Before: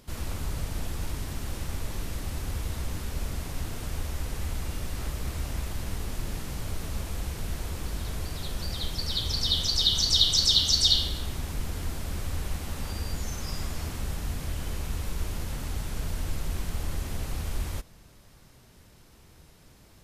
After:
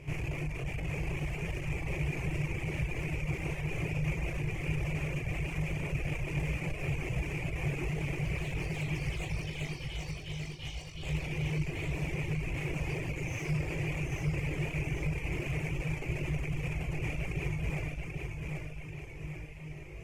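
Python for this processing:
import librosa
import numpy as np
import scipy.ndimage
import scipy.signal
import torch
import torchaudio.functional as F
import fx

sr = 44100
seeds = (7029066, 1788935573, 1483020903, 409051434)

p1 = fx.over_compress(x, sr, threshold_db=-31.0, ratio=-0.5)
p2 = fx.comb_fb(p1, sr, f0_hz=51.0, decay_s=0.85, harmonics='all', damping=0.0, mix_pct=90)
p3 = fx.fold_sine(p2, sr, drive_db=15, ceiling_db=-28.0)
p4 = fx.peak_eq(p3, sr, hz=61.0, db=7.5, octaves=0.36)
p5 = p4 + fx.echo_feedback(p4, sr, ms=786, feedback_pct=48, wet_db=-4.0, dry=0)
p6 = fx.dereverb_blind(p5, sr, rt60_s=0.84)
p7 = fx.curve_eq(p6, sr, hz=(100.0, 150.0, 220.0, 330.0, 760.0, 1500.0, 2400.0, 3800.0, 6500.0, 14000.0), db=(0, 13, -13, 4, -1, -9, 13, -19, -9, -20))
y = p7 * 10.0 ** (-5.0 / 20.0)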